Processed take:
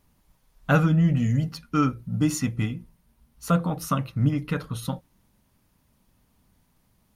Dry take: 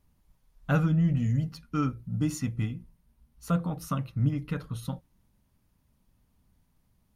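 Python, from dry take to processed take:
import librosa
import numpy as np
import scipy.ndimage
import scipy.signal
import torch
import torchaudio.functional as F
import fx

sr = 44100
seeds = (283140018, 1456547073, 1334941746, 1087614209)

y = fx.low_shelf(x, sr, hz=160.0, db=-8.0)
y = y * librosa.db_to_amplitude(8.0)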